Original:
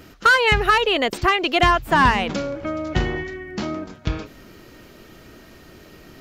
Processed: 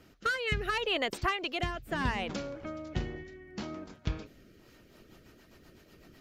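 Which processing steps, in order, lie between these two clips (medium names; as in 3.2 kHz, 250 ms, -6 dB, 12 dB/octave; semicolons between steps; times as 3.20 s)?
rotary cabinet horn 0.7 Hz, later 8 Hz, at 4.38 s; harmonic-percussive split harmonic -5 dB; trim -8 dB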